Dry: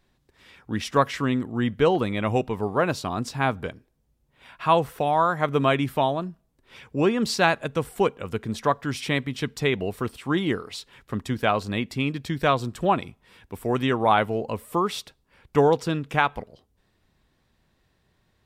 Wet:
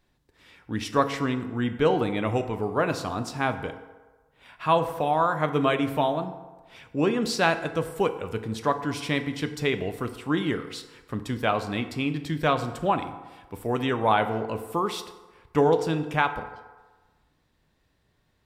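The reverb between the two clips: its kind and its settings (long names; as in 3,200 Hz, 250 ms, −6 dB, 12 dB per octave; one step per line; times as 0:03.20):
feedback delay network reverb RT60 1.3 s, low-frequency decay 0.75×, high-frequency decay 0.55×, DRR 8 dB
level −2.5 dB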